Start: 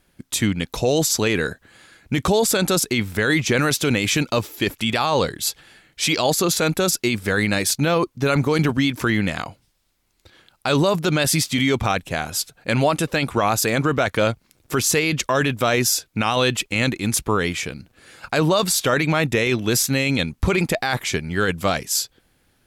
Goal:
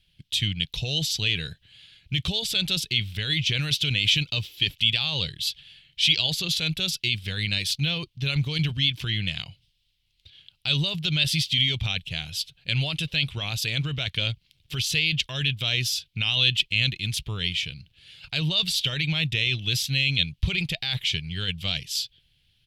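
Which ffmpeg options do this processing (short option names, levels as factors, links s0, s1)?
-af "firequalizer=gain_entry='entry(150,0);entry(230,-17);entry(1200,-20);entry(3000,10);entry(6800,-11)':delay=0.05:min_phase=1,volume=0.75"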